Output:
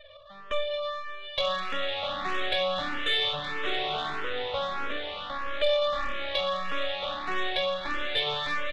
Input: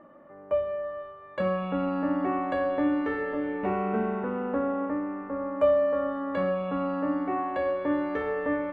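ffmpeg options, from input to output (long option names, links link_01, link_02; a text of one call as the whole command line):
ffmpeg -i in.wav -filter_complex "[0:a]highpass=frequency=430:width=0.5412,highpass=frequency=430:width=1.3066,aemphasis=mode=production:type=riaa,bandreject=frequency=940:width=5.6,afftfilt=real='re*gte(hypot(re,im),0.00501)':imag='im*gte(hypot(re,im),0.00501)':win_size=1024:overlap=0.75,asplit=2[link_01][link_02];[link_02]acompressor=threshold=-39dB:ratio=16,volume=-1dB[link_03];[link_01][link_03]amix=inputs=2:normalize=0,aeval=exprs='max(val(0),0)':channel_layout=same,lowpass=frequency=3600:width_type=q:width=8.5,asoftclip=type=tanh:threshold=-20dB,aecho=1:1:920:0.224,asplit=2[link_04][link_05];[link_05]afreqshift=1.6[link_06];[link_04][link_06]amix=inputs=2:normalize=1,volume=6.5dB" out.wav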